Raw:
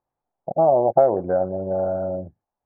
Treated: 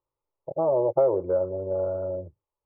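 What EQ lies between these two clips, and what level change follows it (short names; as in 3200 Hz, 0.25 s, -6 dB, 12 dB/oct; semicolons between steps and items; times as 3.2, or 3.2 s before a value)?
air absorption 320 m; fixed phaser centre 1100 Hz, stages 8; 0.0 dB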